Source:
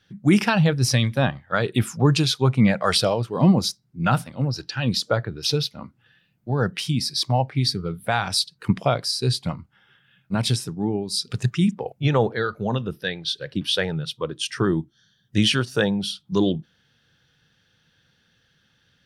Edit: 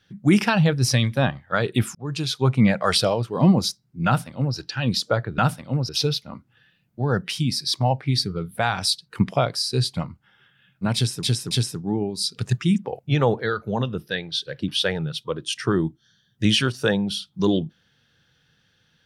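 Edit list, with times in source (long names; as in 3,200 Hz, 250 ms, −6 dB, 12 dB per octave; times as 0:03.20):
0:01.95–0:02.49: fade in
0:04.06–0:04.57: duplicate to 0:05.38
0:10.44–0:10.72: repeat, 3 plays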